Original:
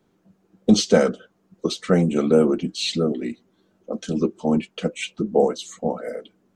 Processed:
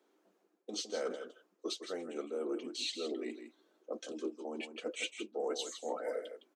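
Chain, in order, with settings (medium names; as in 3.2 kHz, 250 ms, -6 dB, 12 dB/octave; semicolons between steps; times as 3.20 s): reverse; compression 12:1, threshold -28 dBFS, peak gain reduction 19 dB; reverse; steep high-pass 290 Hz 36 dB/octave; delay 160 ms -9.5 dB; trim -5 dB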